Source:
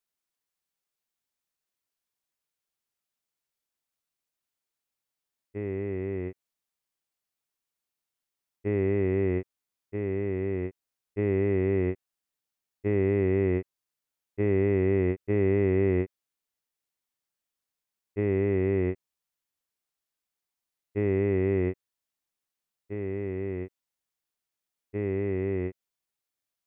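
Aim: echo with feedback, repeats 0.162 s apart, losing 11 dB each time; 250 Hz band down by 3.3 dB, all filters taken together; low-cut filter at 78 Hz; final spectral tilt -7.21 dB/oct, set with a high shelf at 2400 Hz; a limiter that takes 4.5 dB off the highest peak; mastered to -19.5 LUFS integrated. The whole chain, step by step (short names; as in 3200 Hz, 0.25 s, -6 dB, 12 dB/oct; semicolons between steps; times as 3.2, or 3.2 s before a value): HPF 78 Hz; bell 250 Hz -5 dB; high shelf 2400 Hz -3 dB; limiter -20 dBFS; feedback echo 0.162 s, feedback 28%, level -11 dB; gain +13.5 dB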